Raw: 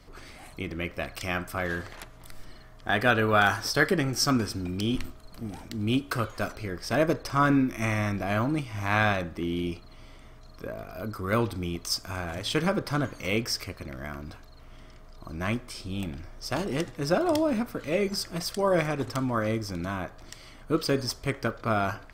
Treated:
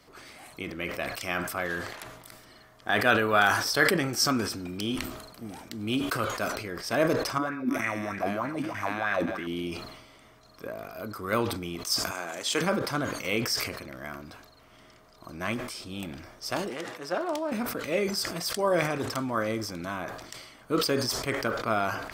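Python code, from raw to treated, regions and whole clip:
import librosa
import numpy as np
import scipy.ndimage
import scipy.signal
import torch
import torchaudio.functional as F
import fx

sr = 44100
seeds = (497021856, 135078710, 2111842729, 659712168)

y = fx.chain(x, sr, fx.level_steps(step_db=17),
    fx.echo_split(split_hz=1200.0, low_ms=146, high_ms=305, feedback_pct=52, wet_db=-15.0),
    fx.bell_lfo(hz=3.2, low_hz=240.0, high_hz=1900.0, db=15), at=(7.38, 9.47))
y = fx.chain(y, sr, fx.highpass(hz=250.0, slope=12),
    fx.peak_eq(hz=7000.0, db=11.0, octaves=0.39), at=(12.11, 12.61))
y = fx.chain(y, sr, fx.highpass(hz=720.0, slope=6),
    fx.high_shelf(hz=2400.0, db=-8.0),
    fx.doppler_dist(depth_ms=0.13), at=(16.69, 17.52))
y = fx.highpass(y, sr, hz=270.0, slope=6)
y = fx.high_shelf(y, sr, hz=11000.0, db=4.0)
y = fx.sustainer(y, sr, db_per_s=55.0)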